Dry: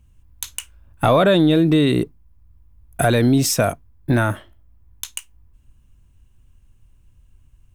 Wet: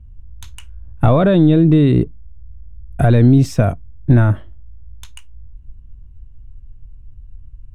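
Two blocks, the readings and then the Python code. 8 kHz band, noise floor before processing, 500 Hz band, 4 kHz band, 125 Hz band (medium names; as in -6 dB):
under -10 dB, -55 dBFS, 0.0 dB, no reading, +8.5 dB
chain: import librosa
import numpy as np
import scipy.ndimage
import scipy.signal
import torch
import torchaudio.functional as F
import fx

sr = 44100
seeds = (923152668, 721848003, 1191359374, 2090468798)

y = fx.riaa(x, sr, side='playback')
y = y * 10.0 ** (-2.5 / 20.0)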